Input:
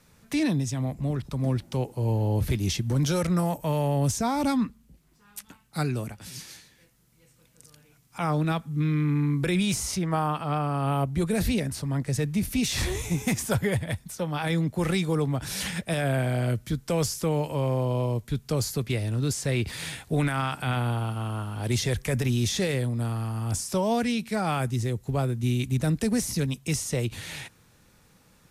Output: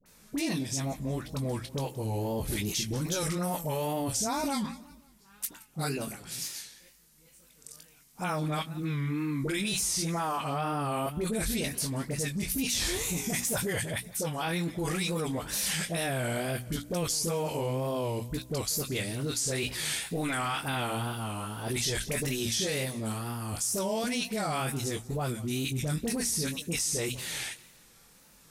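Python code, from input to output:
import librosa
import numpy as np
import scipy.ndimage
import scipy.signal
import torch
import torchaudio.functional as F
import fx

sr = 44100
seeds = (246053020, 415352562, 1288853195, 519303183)

p1 = fx.high_shelf(x, sr, hz=4000.0, db=9.0)
p2 = fx.chorus_voices(p1, sr, voices=4, hz=0.65, base_ms=21, depth_ms=4.2, mix_pct=30)
p3 = fx.peak_eq(p2, sr, hz=100.0, db=-8.0, octaves=1.1)
p4 = fx.hum_notches(p3, sr, base_hz=60, count=5)
p5 = fx.dispersion(p4, sr, late='highs', ms=61.0, hz=900.0)
p6 = p5 + fx.echo_feedback(p5, sr, ms=179, feedback_pct=40, wet_db=-21.0, dry=0)
p7 = fx.wow_flutter(p6, sr, seeds[0], rate_hz=2.1, depth_cents=100.0)
p8 = fx.over_compress(p7, sr, threshold_db=-32.0, ratio=-1.0)
p9 = p7 + F.gain(torch.from_numpy(p8), 0.0).numpy()
y = F.gain(torch.from_numpy(p9), -6.0).numpy()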